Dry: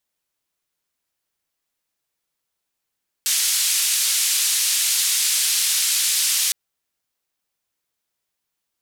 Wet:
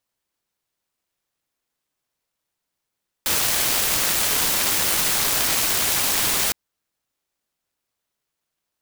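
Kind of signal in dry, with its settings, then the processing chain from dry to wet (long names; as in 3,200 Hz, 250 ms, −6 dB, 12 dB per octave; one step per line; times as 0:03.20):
band-limited noise 3,000–11,000 Hz, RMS −20 dBFS 3.26 s
short delay modulated by noise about 2,600 Hz, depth 0.13 ms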